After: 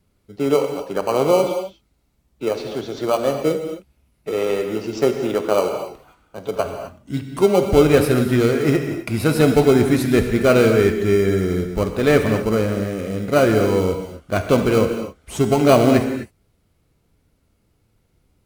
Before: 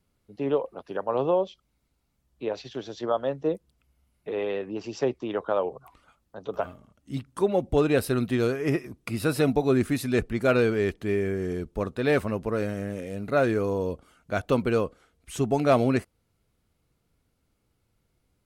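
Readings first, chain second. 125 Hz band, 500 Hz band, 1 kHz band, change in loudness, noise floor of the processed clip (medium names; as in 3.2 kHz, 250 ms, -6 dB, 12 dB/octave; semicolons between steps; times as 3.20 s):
+9.0 dB, +8.5 dB, +7.5 dB, +8.5 dB, -65 dBFS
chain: in parallel at -7.5 dB: sample-and-hold 25×; on the sum: gated-style reverb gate 280 ms flat, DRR 5 dB; trim +5 dB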